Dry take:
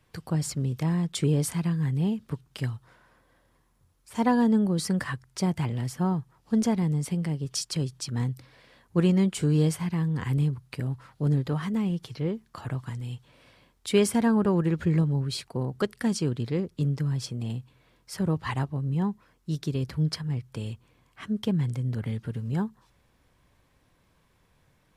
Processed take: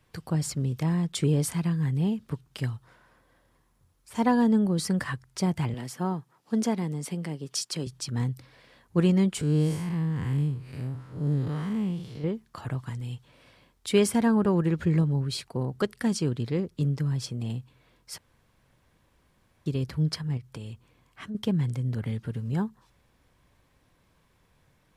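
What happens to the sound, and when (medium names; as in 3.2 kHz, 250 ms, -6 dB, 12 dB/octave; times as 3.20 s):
5.74–7.87 s: high-pass 210 Hz
9.41–12.24 s: spectral blur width 163 ms
18.18–19.66 s: room tone
20.37–21.35 s: compression 2.5:1, threshold -36 dBFS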